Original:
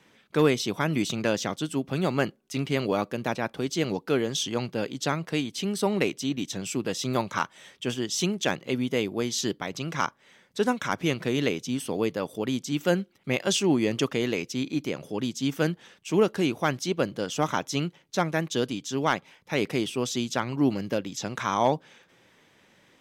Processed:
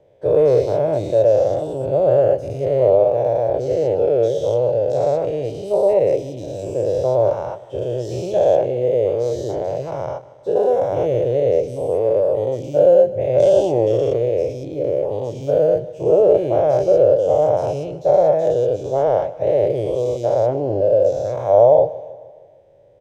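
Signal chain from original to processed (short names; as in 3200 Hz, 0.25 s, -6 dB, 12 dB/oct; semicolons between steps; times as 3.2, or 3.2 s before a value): spectral dilation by 0.24 s; EQ curve 120 Hz 0 dB, 230 Hz -22 dB, 580 Hz +9 dB, 1200 Hz -25 dB; feedback echo 0.154 s, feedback 54%, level -18.5 dB; gain +4.5 dB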